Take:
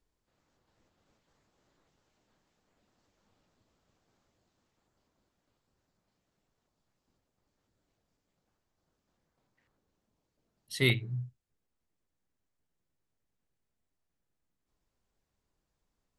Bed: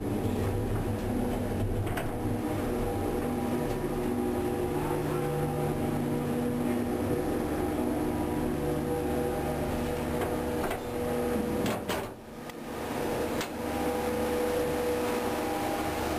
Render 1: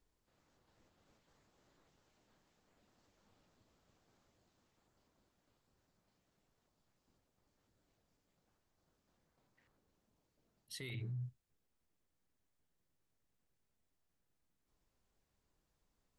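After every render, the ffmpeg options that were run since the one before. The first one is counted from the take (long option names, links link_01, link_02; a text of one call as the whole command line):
ffmpeg -i in.wav -af "areverse,acompressor=threshold=-34dB:ratio=6,areverse,alimiter=level_in=13dB:limit=-24dB:level=0:latency=1:release=24,volume=-13dB" out.wav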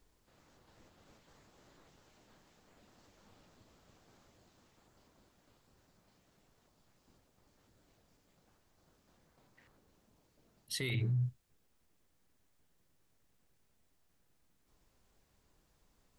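ffmpeg -i in.wav -af "volume=9.5dB" out.wav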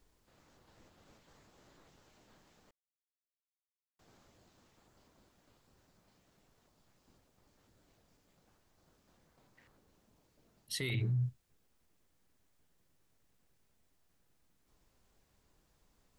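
ffmpeg -i in.wav -filter_complex "[0:a]asplit=3[link_01][link_02][link_03];[link_01]atrim=end=2.71,asetpts=PTS-STARTPTS,afade=type=out:start_time=2.706:duration=0.004:curve=hsin[link_04];[link_02]atrim=start=2.71:end=3.99,asetpts=PTS-STARTPTS,volume=0[link_05];[link_03]atrim=start=3.99,asetpts=PTS-STARTPTS,afade=type=in:duration=0.004:curve=hsin[link_06];[link_04][link_05][link_06]concat=n=3:v=0:a=1" out.wav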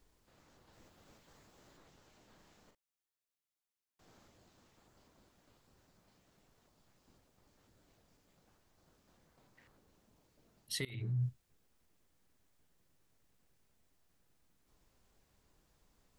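ffmpeg -i in.wav -filter_complex "[0:a]asettb=1/sr,asplit=3[link_01][link_02][link_03];[link_01]atrim=end=0.734[link_04];[link_02]atrim=start=0.73:end=1.77,asetpts=PTS-STARTPTS,afade=type=in:duration=0.004:curve=qsin,afade=type=out:start_time=1.036:duration=0.004:curve=qsin,highshelf=frequency=8800:gain=5.5[link_05];[link_03]atrim=start=1.766[link_06];[link_04][link_05]acrossfade=duration=0.004:curve1=hsin:curve2=qsin[link_07];[link_07][link_06]acrossfade=duration=0.004:curve1=qsin:curve2=hsin,asettb=1/sr,asplit=3[link_08][link_09][link_10];[link_08]atrim=end=2.354[link_11];[link_09]atrim=start=2.35:end=4.29,asetpts=PTS-STARTPTS,afade=type=in:duration=0.004:curve=qsin,afade=type=out:start_time=1.936:duration=0.004:curve=qsin,asplit=2[link_12][link_13];[link_13]adelay=40,volume=-5.5dB[link_14];[link_12][link_14]amix=inputs=2:normalize=0,atrim=end_sample=85554[link_15];[link_10]atrim=start=4.286[link_16];[link_11][link_15]acrossfade=duration=0.004:curve1=hsin:curve2=qsin[link_17];[link_17][link_16]acrossfade=duration=0.004:curve1=qsin:curve2=hsin,asplit=2[link_18][link_19];[link_18]atrim=end=10.85,asetpts=PTS-STARTPTS,afade=type=out:start_time=10.846:duration=0.004:curve=hsin:silence=0.0749894[link_20];[link_19]atrim=start=10.85,asetpts=PTS-STARTPTS,afade=type=in:duration=0.41:silence=0.0749894[link_21];[link_20][link_21]concat=n=2:v=0:a=1" out.wav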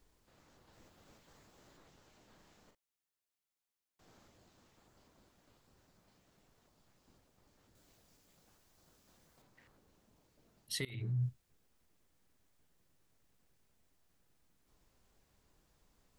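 ffmpeg -i in.wav -filter_complex "[0:a]asettb=1/sr,asplit=3[link_01][link_02][link_03];[link_01]atrim=end=7.754[link_04];[link_02]atrim=start=7.75:end=9.42,asetpts=PTS-STARTPTS,afade=type=in:duration=0.004:curve=qsin,afade=type=out:start_time=1.666:duration=0.004:curve=qsin,highshelf=frequency=3700:gain=8[link_05];[link_03]atrim=start=9.416[link_06];[link_04][link_05]acrossfade=duration=0.004:curve1=hsin:curve2=qsin[link_07];[link_07][link_06]acrossfade=duration=0.004:curve1=qsin:curve2=hsin" out.wav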